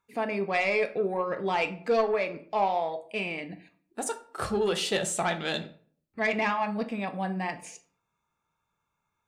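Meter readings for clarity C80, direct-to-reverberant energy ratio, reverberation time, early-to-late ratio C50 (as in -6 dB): 19.0 dB, 7.5 dB, 0.50 s, 14.0 dB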